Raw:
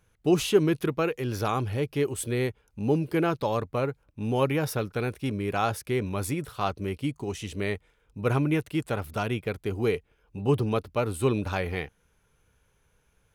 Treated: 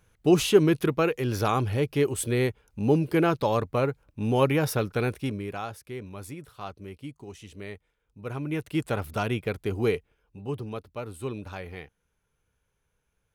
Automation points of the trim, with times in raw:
5.15 s +2.5 dB
5.69 s -10 dB
8.33 s -10 dB
8.77 s +1 dB
9.89 s +1 dB
10.46 s -9 dB

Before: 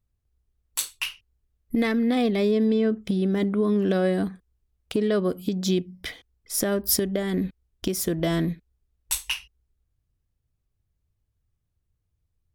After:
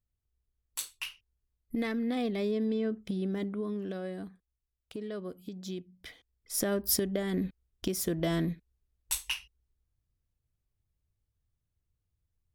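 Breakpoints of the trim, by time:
3.30 s -9 dB
4.01 s -15.5 dB
5.91 s -15.5 dB
6.58 s -5.5 dB

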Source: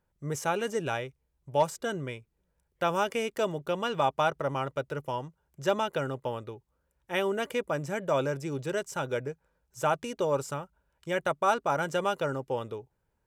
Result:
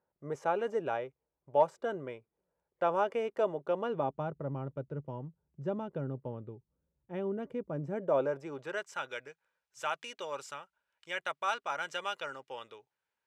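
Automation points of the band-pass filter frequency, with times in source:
band-pass filter, Q 0.87
3.70 s 630 Hz
4.24 s 170 Hz
7.69 s 170 Hz
8.25 s 620 Hz
9.15 s 2.7 kHz

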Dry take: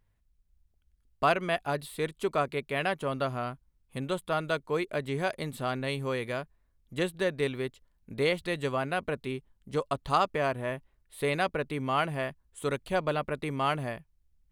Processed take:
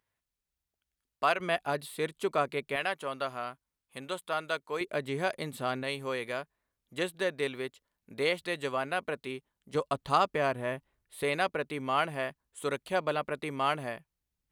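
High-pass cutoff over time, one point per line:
high-pass 6 dB/octave
690 Hz
from 1.40 s 210 Hz
from 2.76 s 740 Hz
from 4.81 s 190 Hz
from 5.83 s 400 Hz
from 9.75 s 130 Hz
from 11.23 s 300 Hz

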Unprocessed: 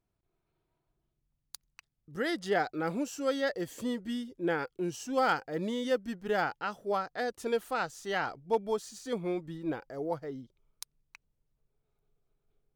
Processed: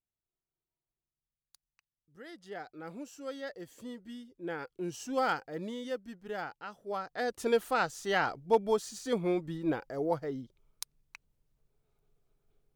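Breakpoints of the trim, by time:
2.16 s -17.5 dB
3.04 s -10 dB
4.31 s -10 dB
5.04 s -1 dB
6.10 s -8.5 dB
6.78 s -8.5 dB
7.39 s +3 dB

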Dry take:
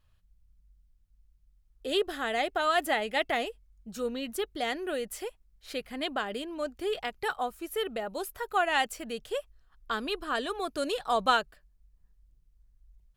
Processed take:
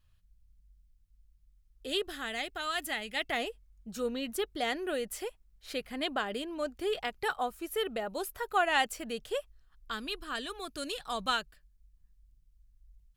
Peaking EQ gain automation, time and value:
peaking EQ 620 Hz 2.5 oct
1.86 s -6.5 dB
2.55 s -13 dB
3.09 s -13 dB
3.49 s -1 dB
9.37 s -1 dB
9.92 s -10.5 dB

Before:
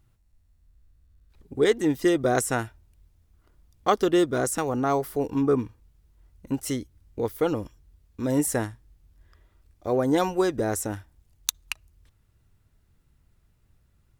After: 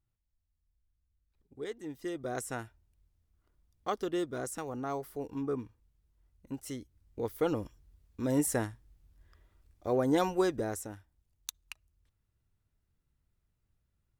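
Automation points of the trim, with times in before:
1.82 s -19 dB
2.50 s -12 dB
6.70 s -12 dB
7.52 s -5 dB
10.48 s -5 dB
10.96 s -14 dB

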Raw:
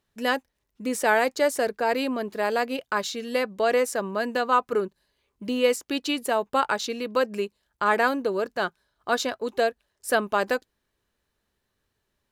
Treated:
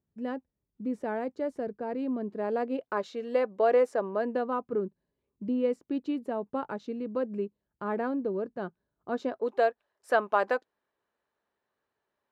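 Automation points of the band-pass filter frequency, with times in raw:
band-pass filter, Q 0.85
2.01 s 150 Hz
3.14 s 530 Hz
4.11 s 530 Hz
4.64 s 190 Hz
9.09 s 190 Hz
9.62 s 820 Hz

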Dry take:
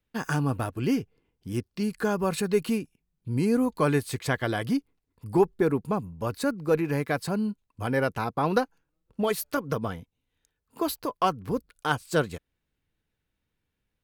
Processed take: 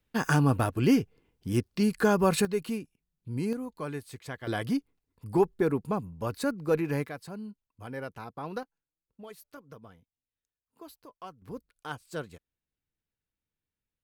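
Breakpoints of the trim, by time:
+3 dB
from 2.45 s -6 dB
from 3.53 s -12.5 dB
from 4.47 s -2.5 dB
from 7.09 s -12.5 dB
from 8.63 s -20 dB
from 11.42 s -12 dB

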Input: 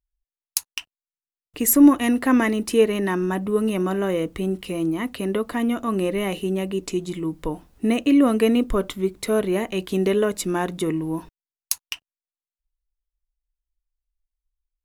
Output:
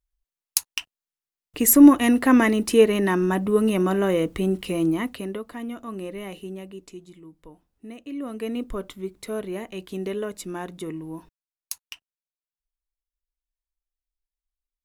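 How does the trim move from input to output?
4.94 s +1.5 dB
5.45 s -10.5 dB
6.44 s -10.5 dB
7.30 s -19.5 dB
8.01 s -19.5 dB
8.61 s -9 dB

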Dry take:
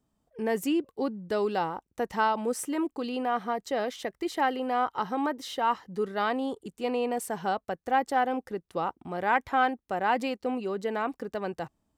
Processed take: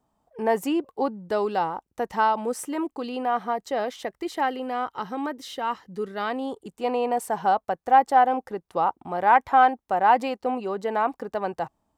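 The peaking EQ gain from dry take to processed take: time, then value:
peaking EQ 850 Hz 1.2 oct
0.94 s +12.5 dB
1.60 s +5 dB
4.15 s +5 dB
4.80 s -2 dB
6.19 s -2 dB
6.79 s +9.5 dB

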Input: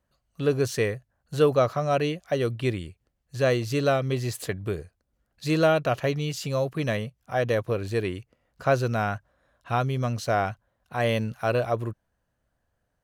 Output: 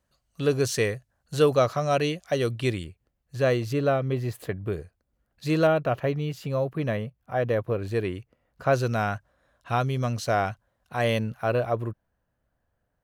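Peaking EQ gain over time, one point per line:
peaking EQ 6.8 kHz 2.2 oct
+5 dB
from 2.84 s -4.5 dB
from 3.73 s -13 dB
from 4.72 s -4.5 dB
from 5.67 s -13 dB
from 7.82 s -6 dB
from 8.73 s +1.5 dB
from 11.19 s -7.5 dB

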